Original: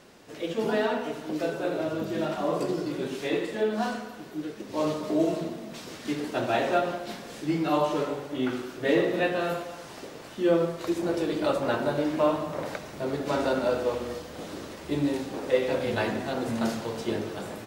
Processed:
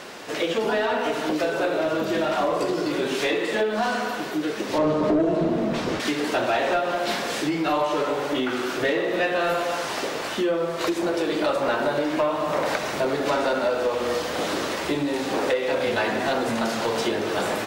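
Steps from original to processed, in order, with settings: 2.25–3.71 requantised 12-bit, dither none; high shelf 8000 Hz +4.5 dB; compressor 10:1, threshold -32 dBFS, peak gain reduction 15 dB; 4.78–6 tilt -3.5 dB/oct; overdrive pedal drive 16 dB, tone 3700 Hz, clips at -19 dBFS; gain +7.5 dB

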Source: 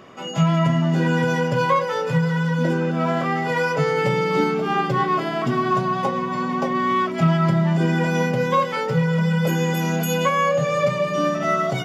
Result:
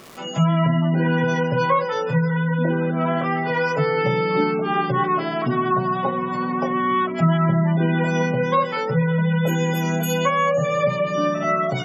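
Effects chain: crackle 560/s -32 dBFS; spectral gate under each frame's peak -30 dB strong

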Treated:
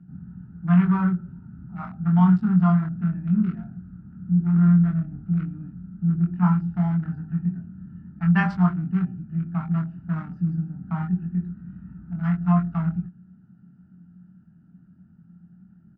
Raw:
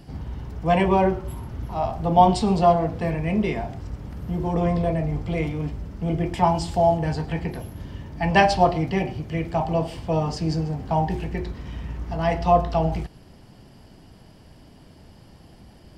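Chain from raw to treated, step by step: Wiener smoothing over 41 samples; double band-pass 500 Hz, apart 2.9 oct; doubler 23 ms -3.5 dB; gain +7 dB

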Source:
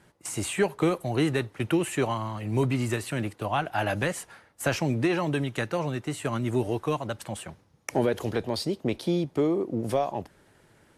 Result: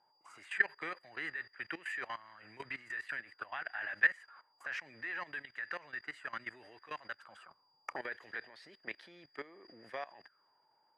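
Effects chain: whine 4800 Hz -43 dBFS; auto-wah 780–1800 Hz, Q 7.9, up, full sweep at -27.5 dBFS; level quantiser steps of 17 dB; gain +11.5 dB

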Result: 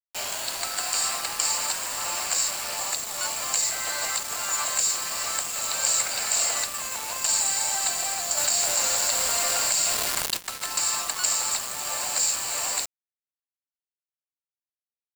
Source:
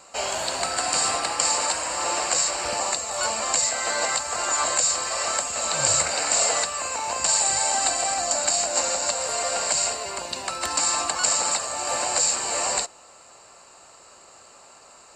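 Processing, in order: HPF 1500 Hz 6 dB/oct; bit-crush 5-bit; 8.37–10.37 fast leveller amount 70%; gain -2 dB

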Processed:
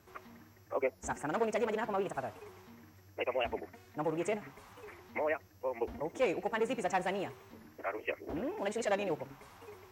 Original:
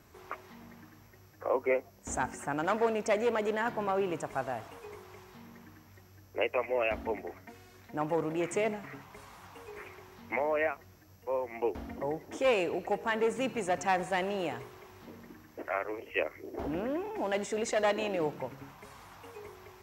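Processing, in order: time stretch by phase-locked vocoder 0.5×; record warp 45 rpm, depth 100 cents; gain -2 dB

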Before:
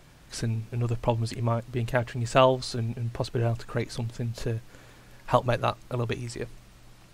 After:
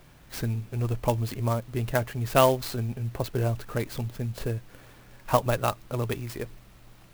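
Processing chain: clock jitter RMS 0.034 ms

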